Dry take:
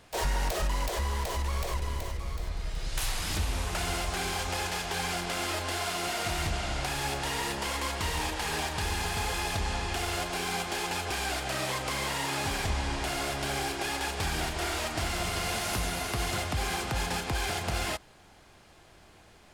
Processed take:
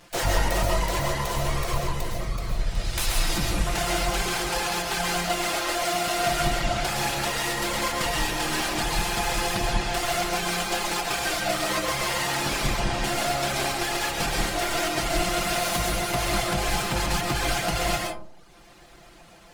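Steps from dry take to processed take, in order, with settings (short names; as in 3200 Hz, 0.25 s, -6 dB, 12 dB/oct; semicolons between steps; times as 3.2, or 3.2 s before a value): minimum comb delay 5.8 ms; reverb removal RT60 0.96 s; reverb RT60 0.55 s, pre-delay 90 ms, DRR -0.5 dB; gain +6.5 dB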